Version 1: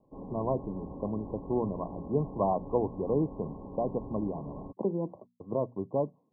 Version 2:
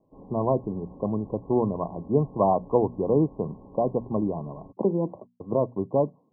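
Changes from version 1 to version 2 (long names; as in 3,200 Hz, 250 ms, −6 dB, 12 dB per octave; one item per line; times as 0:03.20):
speech +6.5 dB
background −4.5 dB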